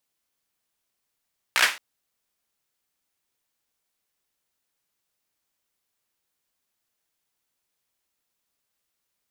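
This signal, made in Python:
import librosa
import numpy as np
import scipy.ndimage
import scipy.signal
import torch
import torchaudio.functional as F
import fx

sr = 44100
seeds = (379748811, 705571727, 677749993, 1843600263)

y = fx.drum_clap(sr, seeds[0], length_s=0.22, bursts=5, spacing_ms=16, hz=1900.0, decay_s=0.32)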